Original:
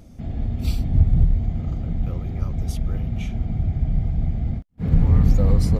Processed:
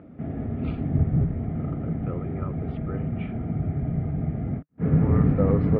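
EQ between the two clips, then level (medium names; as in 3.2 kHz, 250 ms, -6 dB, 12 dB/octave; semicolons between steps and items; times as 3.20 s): distance through air 250 m; cabinet simulation 120–2700 Hz, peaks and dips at 150 Hz +4 dB, 290 Hz +7 dB, 420 Hz +8 dB, 620 Hz +4 dB, 1.3 kHz +8 dB, 1.8 kHz +4 dB; 0.0 dB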